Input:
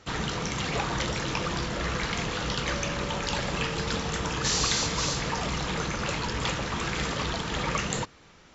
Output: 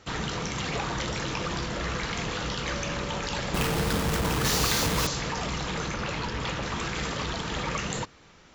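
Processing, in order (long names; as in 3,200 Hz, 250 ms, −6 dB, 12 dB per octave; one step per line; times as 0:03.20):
0:03.54–0:05.07: each half-wave held at its own peak
in parallel at +2 dB: brickwall limiter −22.5 dBFS, peak gain reduction 10 dB
0:05.94–0:06.63: on the sum: Bessel low-pass filter 5,300 Hz
level −7 dB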